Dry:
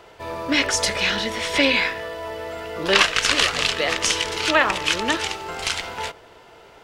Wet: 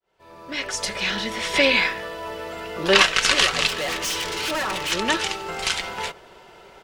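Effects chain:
fade in at the beginning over 1.67 s
comb filter 5.3 ms, depth 41%
0:03.67–0:04.92: gain into a clipping stage and back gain 23.5 dB

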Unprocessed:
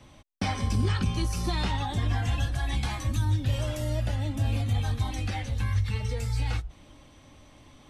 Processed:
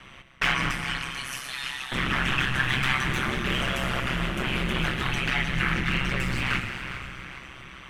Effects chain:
0:00.71–0:01.92: first-order pre-emphasis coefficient 0.97
wave folding −26 dBFS
echo with a time of its own for lows and highs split 430 Hz, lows 132 ms, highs 410 ms, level −13 dB
convolution reverb RT60 3.5 s, pre-delay 98 ms, DRR 5.5 dB
ring modulation 66 Hz
flat-topped bell 1,900 Hz +14 dB
level +4 dB

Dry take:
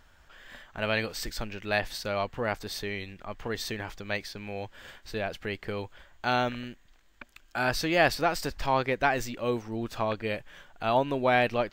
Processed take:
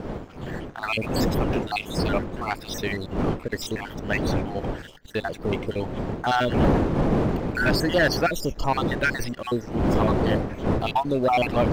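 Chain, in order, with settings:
time-frequency cells dropped at random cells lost 58%
wind on the microphone 380 Hz −33 dBFS
leveller curve on the samples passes 2

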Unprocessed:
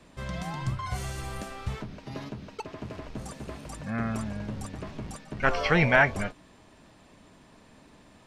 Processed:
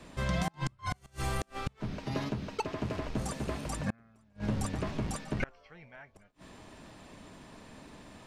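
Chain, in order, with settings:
gate with flip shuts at −24 dBFS, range −35 dB
level +4 dB

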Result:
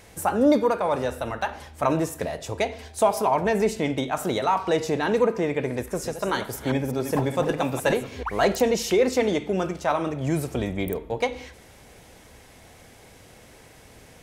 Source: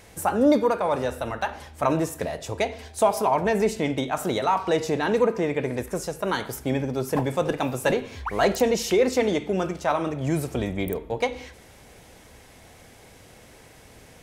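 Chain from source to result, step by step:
0:05.74–0:08.23: delay that plays each chunk backwards 196 ms, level −8.5 dB

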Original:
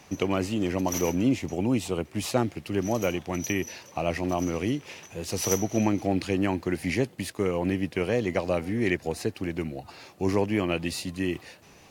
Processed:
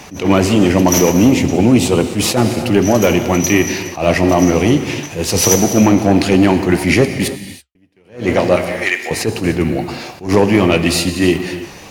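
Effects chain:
0:08.56–0:09.11: high-pass filter 1,000 Hz 12 dB per octave
soft clipping −17.5 dBFS, distortion −17 dB
0:07.28–0:07.75: silence
flanger 1.4 Hz, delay 2.5 ms, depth 9.3 ms, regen −69%
reverb whose tail is shaped and stops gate 350 ms flat, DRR 8.5 dB
boost into a limiter +22 dB
level that may rise only so fast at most 170 dB per second
level −1 dB

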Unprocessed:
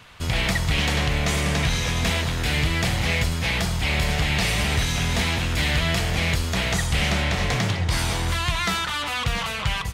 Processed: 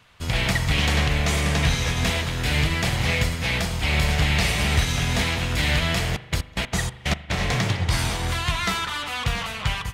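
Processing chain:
0:06.13–0:07.31: gate pattern "x.xx..x.." 185 BPM −24 dB
spring reverb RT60 1.5 s, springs 40 ms, chirp 80 ms, DRR 9 dB
expander for the loud parts 1.5 to 1, over −37 dBFS
level +2 dB

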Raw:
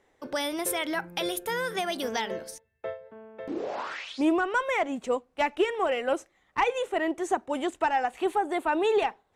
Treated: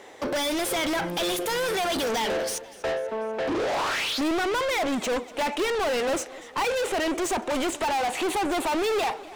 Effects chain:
parametric band 1,600 Hz −6.5 dB 1.6 octaves
mid-hump overdrive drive 37 dB, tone 5,500 Hz, clips at −15 dBFS
feedback echo with a swinging delay time 245 ms, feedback 56%, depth 87 cents, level −19 dB
level −4.5 dB

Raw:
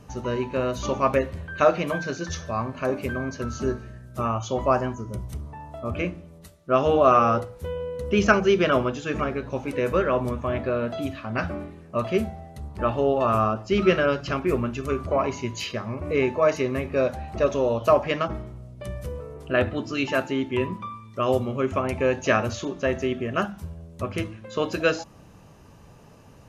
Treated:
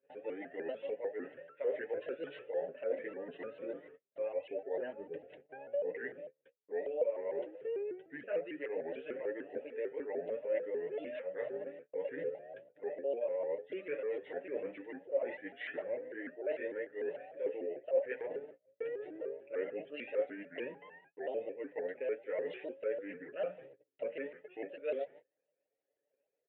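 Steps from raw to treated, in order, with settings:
pitch shifter swept by a sawtooth −7.5 semitones, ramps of 686 ms
high-pass filter 300 Hz 12 dB per octave
noise gate −51 dBFS, range −30 dB
comb filter 7 ms, depth 66%
reversed playback
downward compressor 10 to 1, threshold −34 dBFS, peak gain reduction 23.5 dB
reversed playback
downsampling to 8,000 Hz
formant filter e
high-frequency loss of the air 380 metres
pitch modulation by a square or saw wave saw up 6.7 Hz, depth 160 cents
level +10 dB

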